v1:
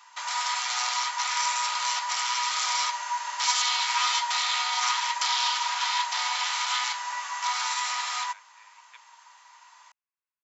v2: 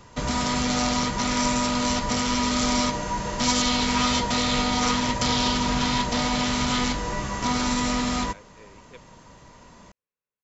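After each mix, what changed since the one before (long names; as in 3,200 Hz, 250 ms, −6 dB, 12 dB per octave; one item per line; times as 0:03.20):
master: remove elliptic high-pass filter 870 Hz, stop band 60 dB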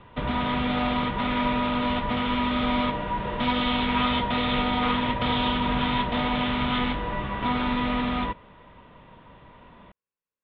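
speech: entry −0.90 s
master: add Chebyshev low-pass filter 3,600 Hz, order 6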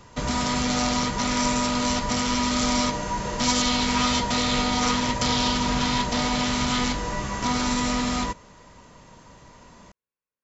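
master: remove Chebyshev low-pass filter 3,600 Hz, order 6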